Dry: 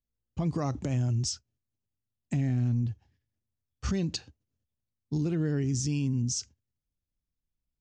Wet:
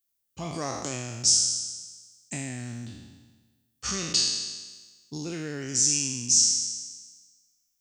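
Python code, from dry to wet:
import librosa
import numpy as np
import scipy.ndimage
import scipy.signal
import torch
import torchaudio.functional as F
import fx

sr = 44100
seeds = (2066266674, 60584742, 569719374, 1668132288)

y = fx.spec_trails(x, sr, decay_s=1.33)
y = fx.riaa(y, sr, side='recording')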